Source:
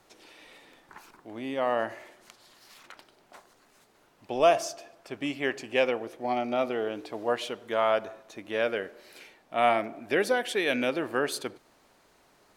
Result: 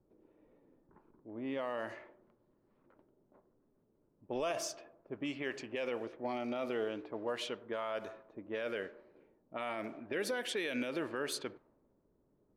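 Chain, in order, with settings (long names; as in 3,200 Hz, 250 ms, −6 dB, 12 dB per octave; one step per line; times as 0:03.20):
notch filter 700 Hz, Q 21
low-pass that shuts in the quiet parts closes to 340 Hz, open at −25 dBFS
parametric band 760 Hz −5.5 dB 0.25 octaves
brickwall limiter −23 dBFS, peak gain reduction 11.5 dB
level −4 dB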